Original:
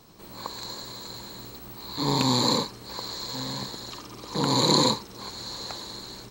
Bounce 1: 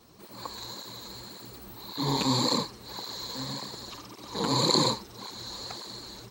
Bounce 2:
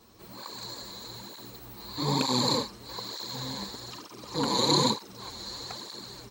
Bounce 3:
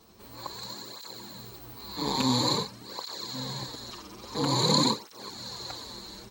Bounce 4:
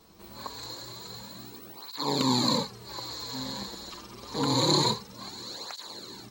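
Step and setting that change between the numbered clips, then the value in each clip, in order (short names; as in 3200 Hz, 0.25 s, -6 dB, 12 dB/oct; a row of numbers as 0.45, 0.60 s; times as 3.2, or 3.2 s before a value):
tape flanging out of phase, nulls at: 1.8, 1.1, 0.49, 0.26 Hz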